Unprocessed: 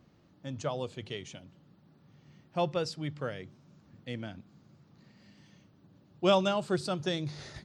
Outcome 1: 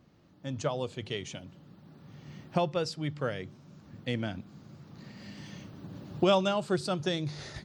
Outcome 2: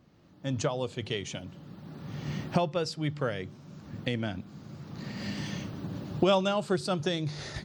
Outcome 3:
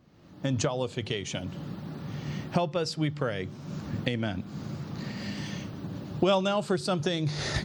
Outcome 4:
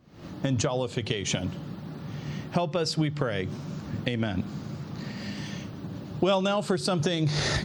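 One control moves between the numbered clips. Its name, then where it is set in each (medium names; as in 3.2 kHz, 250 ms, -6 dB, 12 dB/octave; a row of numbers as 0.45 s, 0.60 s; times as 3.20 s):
recorder AGC, rising by: 5.7 dB/s, 15 dB/s, 37 dB/s, 90 dB/s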